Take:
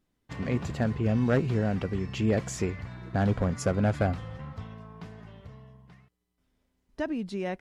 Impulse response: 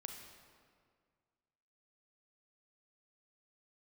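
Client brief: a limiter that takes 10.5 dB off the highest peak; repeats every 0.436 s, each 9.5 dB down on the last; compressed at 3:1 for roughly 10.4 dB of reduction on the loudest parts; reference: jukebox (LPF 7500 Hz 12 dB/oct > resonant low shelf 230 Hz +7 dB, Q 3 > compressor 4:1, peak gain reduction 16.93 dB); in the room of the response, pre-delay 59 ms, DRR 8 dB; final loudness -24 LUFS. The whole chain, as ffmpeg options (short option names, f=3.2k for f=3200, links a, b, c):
-filter_complex "[0:a]acompressor=threshold=-35dB:ratio=3,alimiter=level_in=8.5dB:limit=-24dB:level=0:latency=1,volume=-8.5dB,aecho=1:1:436|872|1308|1744:0.335|0.111|0.0365|0.012,asplit=2[a][b];[1:a]atrim=start_sample=2205,adelay=59[c];[b][c]afir=irnorm=-1:irlink=0,volume=-4.5dB[d];[a][d]amix=inputs=2:normalize=0,lowpass=7.5k,lowshelf=f=230:t=q:w=3:g=7,acompressor=threshold=-47dB:ratio=4,volume=24.5dB"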